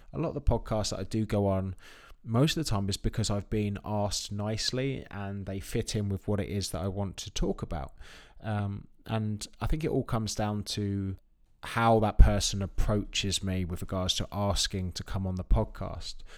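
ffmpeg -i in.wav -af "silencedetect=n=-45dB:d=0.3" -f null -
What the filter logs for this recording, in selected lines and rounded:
silence_start: 11.15
silence_end: 11.63 | silence_duration: 0.48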